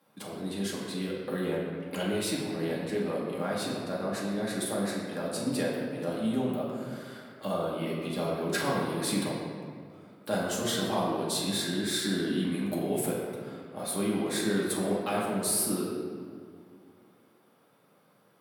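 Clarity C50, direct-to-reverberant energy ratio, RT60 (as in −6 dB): 0.5 dB, −5.0 dB, 2.2 s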